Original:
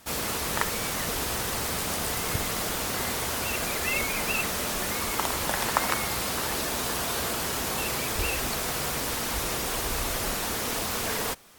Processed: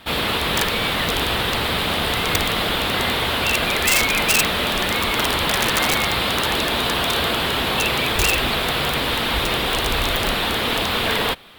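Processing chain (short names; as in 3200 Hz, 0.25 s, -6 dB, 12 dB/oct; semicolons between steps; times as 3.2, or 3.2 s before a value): resonant high shelf 4700 Hz -10 dB, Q 3; wrapped overs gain 19 dB; gain +9 dB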